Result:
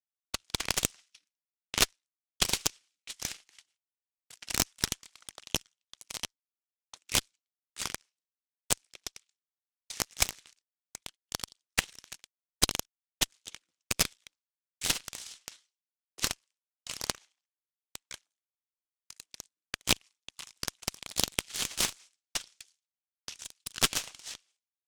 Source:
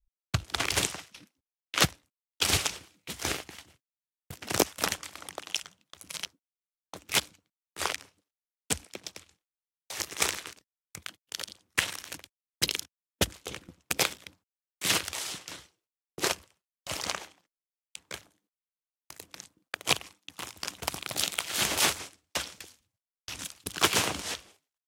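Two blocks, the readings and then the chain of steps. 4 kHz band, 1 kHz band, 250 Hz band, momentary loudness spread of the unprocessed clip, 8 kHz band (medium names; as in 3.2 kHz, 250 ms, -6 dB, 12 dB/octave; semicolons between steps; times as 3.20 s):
-2.0 dB, -6.0 dB, -4.0 dB, 20 LU, -0.5 dB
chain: frequency weighting ITU-R 468; Chebyshev shaper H 3 -19 dB, 6 -13 dB, 8 -28 dB, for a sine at 6 dBFS; transient shaper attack +9 dB, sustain -7 dB; trim -16 dB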